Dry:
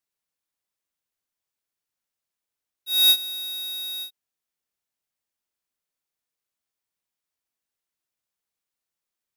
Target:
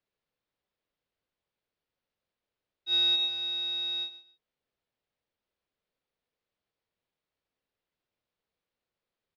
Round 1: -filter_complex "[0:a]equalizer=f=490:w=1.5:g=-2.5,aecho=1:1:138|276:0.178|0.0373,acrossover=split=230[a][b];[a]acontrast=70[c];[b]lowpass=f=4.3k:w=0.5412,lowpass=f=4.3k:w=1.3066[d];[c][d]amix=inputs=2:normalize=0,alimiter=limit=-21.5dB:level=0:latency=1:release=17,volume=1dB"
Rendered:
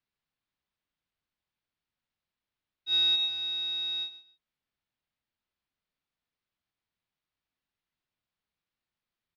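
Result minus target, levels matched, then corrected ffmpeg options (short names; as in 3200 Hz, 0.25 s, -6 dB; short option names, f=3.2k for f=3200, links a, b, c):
500 Hz band -6.5 dB
-filter_complex "[0:a]equalizer=f=490:w=1.5:g=8.5,aecho=1:1:138|276:0.178|0.0373,acrossover=split=230[a][b];[a]acontrast=70[c];[b]lowpass=f=4.3k:w=0.5412,lowpass=f=4.3k:w=1.3066[d];[c][d]amix=inputs=2:normalize=0,alimiter=limit=-21.5dB:level=0:latency=1:release=17,volume=1dB"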